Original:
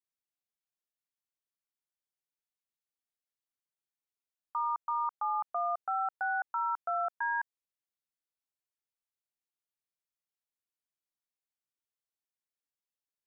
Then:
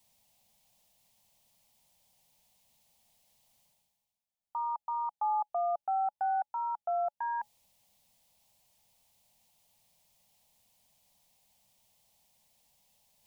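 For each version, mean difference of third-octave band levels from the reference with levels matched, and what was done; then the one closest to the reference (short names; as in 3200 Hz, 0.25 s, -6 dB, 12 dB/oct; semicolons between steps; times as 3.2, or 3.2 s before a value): 1.5 dB: EQ curve 220 Hz 0 dB, 330 Hz -19 dB, 580 Hz -2 dB, 840 Hz +1 dB, 1400 Hz -20 dB, 2100 Hz -9 dB, 3000 Hz -5 dB; reverse; upward compressor, threshold -54 dBFS; reverse; gain +4.5 dB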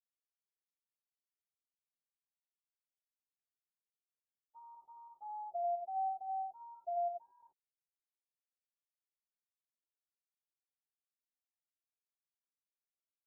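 4.0 dB: sine-wave speech; steep low-pass 630 Hz 48 dB/oct; compressor, threshold -41 dBFS, peak gain reduction 4 dB; non-linear reverb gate 0.11 s rising, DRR -2 dB; gain +4.5 dB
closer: first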